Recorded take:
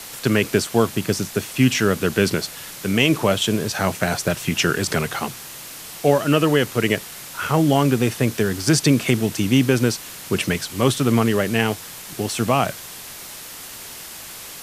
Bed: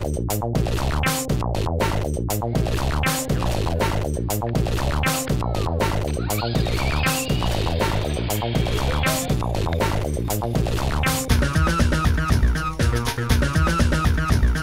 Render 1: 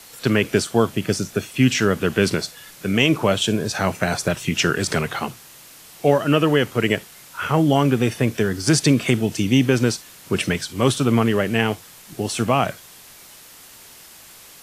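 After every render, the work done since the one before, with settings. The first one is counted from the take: noise print and reduce 8 dB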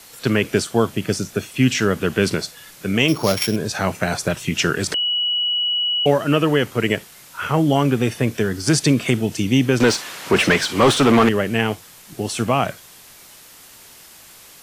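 3.08–3.56 s: sorted samples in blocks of 8 samples; 4.94–6.06 s: bleep 2.93 kHz -17.5 dBFS; 9.80–11.29 s: overdrive pedal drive 24 dB, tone 2.1 kHz, clips at -4 dBFS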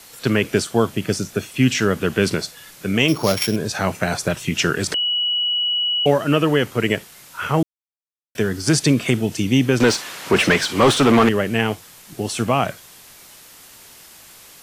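7.63–8.35 s: mute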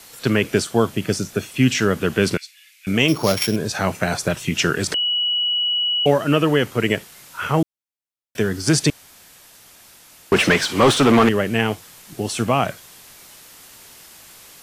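2.37–2.87 s: ladder high-pass 2.1 kHz, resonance 65%; 8.90–10.32 s: room tone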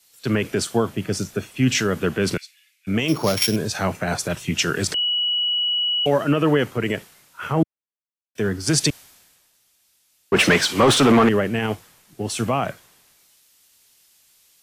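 peak limiter -10 dBFS, peak gain reduction 7.5 dB; three bands expanded up and down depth 70%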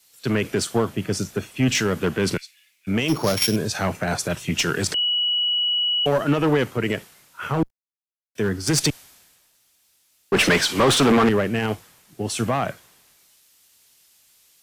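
one-sided clip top -16.5 dBFS; bit crusher 12-bit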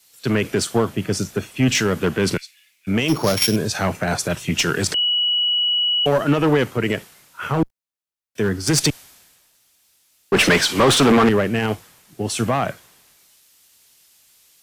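trim +2.5 dB

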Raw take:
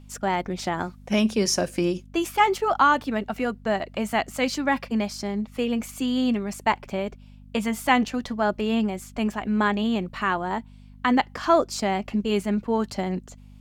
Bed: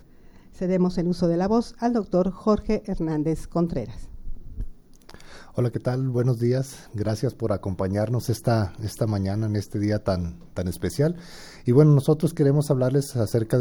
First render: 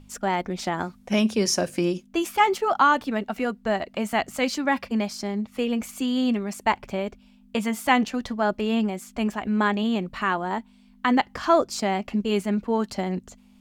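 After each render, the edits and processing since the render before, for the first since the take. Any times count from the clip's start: de-hum 50 Hz, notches 3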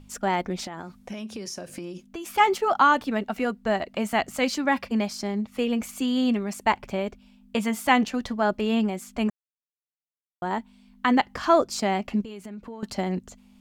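0.66–2.34 s: compression 8:1, threshold -32 dBFS; 9.30–10.42 s: mute; 12.21–12.83 s: compression 10:1, threshold -35 dBFS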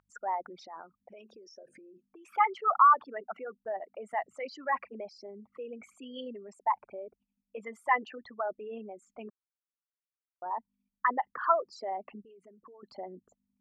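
resonances exaggerated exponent 3; band-pass filter 1.3 kHz, Q 2.2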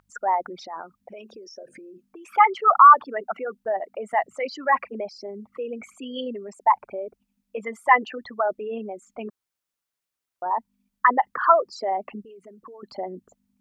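trim +10 dB; peak limiter -3 dBFS, peak gain reduction 2.5 dB

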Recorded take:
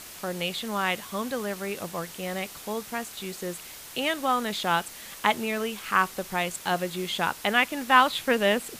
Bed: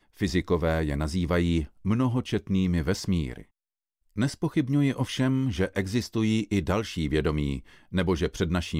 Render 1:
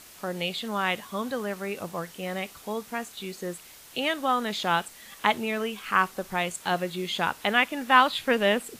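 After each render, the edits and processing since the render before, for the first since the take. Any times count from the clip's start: noise print and reduce 6 dB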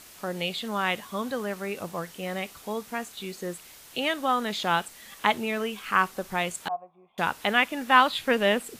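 6.68–7.18 s: cascade formant filter a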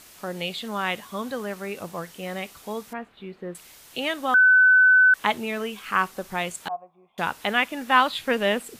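2.93–3.55 s: distance through air 500 m; 4.34–5.14 s: bleep 1.51 kHz -12 dBFS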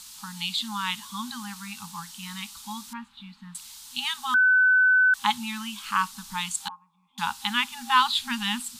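FFT band-reject 250–800 Hz; graphic EQ 125/500/2000/4000/8000 Hz -9/+5/-8/+8/+6 dB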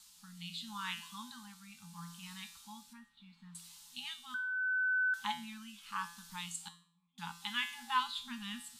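feedback comb 170 Hz, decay 0.51 s, harmonics all, mix 80%; rotary cabinet horn 0.75 Hz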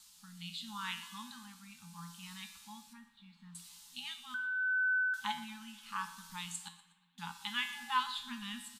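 feedback delay 121 ms, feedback 39%, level -17.5 dB; spring tank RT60 1.7 s, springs 57 ms, chirp 35 ms, DRR 15.5 dB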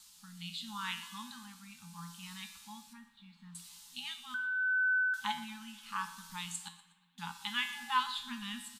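trim +1.5 dB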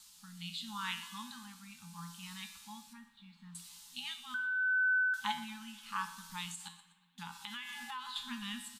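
6.50–8.16 s: compression, threshold -40 dBFS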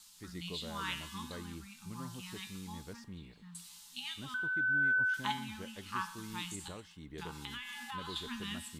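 add bed -22 dB

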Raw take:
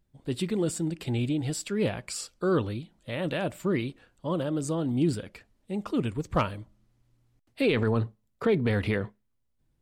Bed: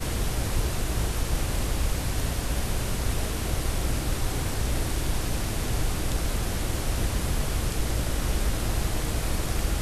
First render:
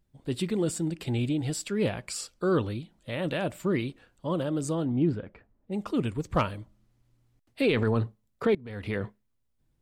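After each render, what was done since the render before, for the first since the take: 4.84–5.71 s: low-pass 2.3 kHz -> 1.1 kHz; 8.55–9.04 s: fade in quadratic, from -19.5 dB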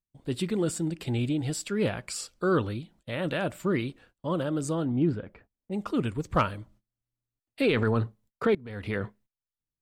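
gate -57 dBFS, range -23 dB; dynamic bell 1.4 kHz, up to +5 dB, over -49 dBFS, Q 2.8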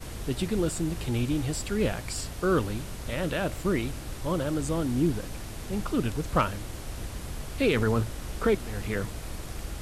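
add bed -10 dB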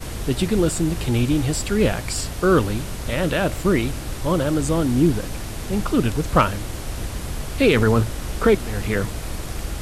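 trim +8 dB

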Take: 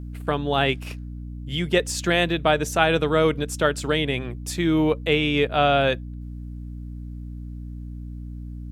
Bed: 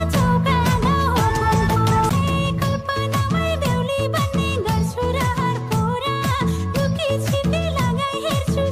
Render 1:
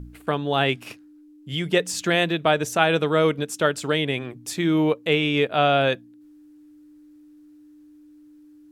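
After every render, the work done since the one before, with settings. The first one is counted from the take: de-hum 60 Hz, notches 4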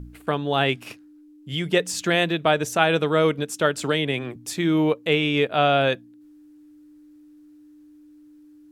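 3.79–4.36 s: three bands compressed up and down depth 40%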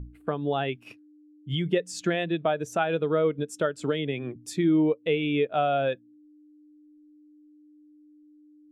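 compression 3:1, threshold -26 dBFS, peak gain reduction 10 dB; spectral contrast expander 1.5:1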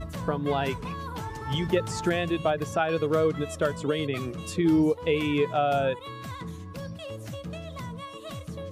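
add bed -17.5 dB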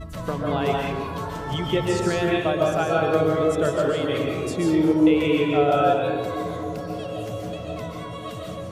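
on a send: feedback echo behind a band-pass 265 ms, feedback 84%, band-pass 530 Hz, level -14.5 dB; on the sum: algorithmic reverb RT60 1.1 s, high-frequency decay 0.55×, pre-delay 100 ms, DRR -2 dB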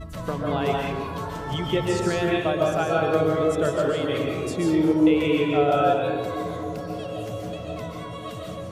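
trim -1 dB

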